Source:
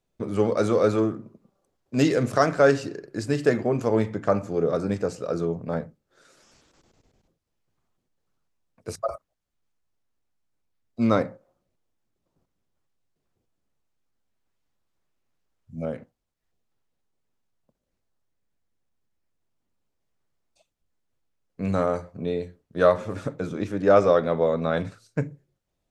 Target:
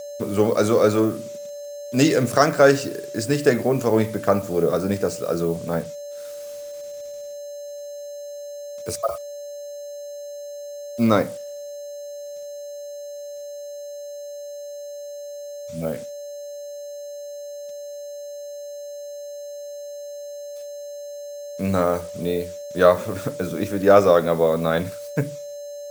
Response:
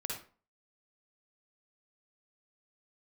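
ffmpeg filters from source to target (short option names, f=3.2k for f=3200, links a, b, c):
-filter_complex "[0:a]aeval=exprs='val(0)+0.0158*sin(2*PI*580*n/s)':c=same,acrossover=split=4600[a][b];[a]highpass=f=64:p=1[c];[c][b]amix=inputs=2:normalize=0,acrusher=bits=7:mix=0:aa=0.5,crystalizer=i=1.5:c=0,volume=3.5dB"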